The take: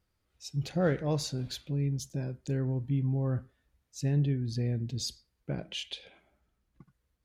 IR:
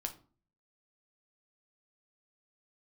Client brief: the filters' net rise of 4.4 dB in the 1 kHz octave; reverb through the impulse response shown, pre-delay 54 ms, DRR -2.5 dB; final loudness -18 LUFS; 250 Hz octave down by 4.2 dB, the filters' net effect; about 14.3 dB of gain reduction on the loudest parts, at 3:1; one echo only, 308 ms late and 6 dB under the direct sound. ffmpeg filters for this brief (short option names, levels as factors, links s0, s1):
-filter_complex "[0:a]equalizer=f=250:t=o:g=-7.5,equalizer=f=1000:t=o:g=7,acompressor=threshold=0.00631:ratio=3,aecho=1:1:308:0.501,asplit=2[s0][s1];[1:a]atrim=start_sample=2205,adelay=54[s2];[s1][s2]afir=irnorm=-1:irlink=0,volume=1.41[s3];[s0][s3]amix=inputs=2:normalize=0,volume=12.6"